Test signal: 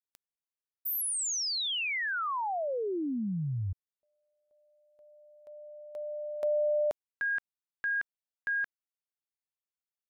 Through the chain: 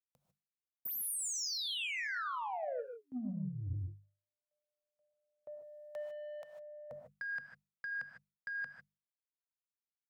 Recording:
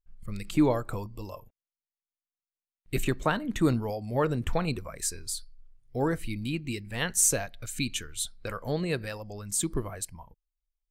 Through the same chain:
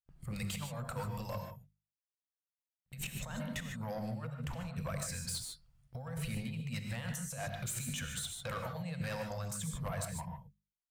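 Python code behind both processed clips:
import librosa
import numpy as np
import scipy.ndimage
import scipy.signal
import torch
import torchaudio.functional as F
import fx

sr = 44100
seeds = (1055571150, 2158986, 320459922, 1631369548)

y = scipy.signal.sosfilt(scipy.signal.cheby1(4, 1.0, [240.0, 490.0], 'bandstop', fs=sr, output='sos'), x)
y = fx.gate_hold(y, sr, open_db=-49.0, close_db=-56.0, hold_ms=71.0, range_db=-21, attack_ms=0.79, release_ms=192.0)
y = scipy.signal.sosfilt(scipy.signal.butter(2, 52.0, 'highpass', fs=sr, output='sos'), y)
y = fx.peak_eq(y, sr, hz=140.0, db=11.0, octaves=0.3)
y = fx.hum_notches(y, sr, base_hz=50, count=4)
y = fx.over_compress(y, sr, threshold_db=-37.0, ratio=-1.0)
y = 10.0 ** (-32.0 / 20.0) * np.tanh(y / 10.0 ** (-32.0 / 20.0))
y = fx.rev_gated(y, sr, seeds[0], gate_ms=170, shape='rising', drr_db=4.5)
y = y * librosa.db_to_amplitude(-2.0)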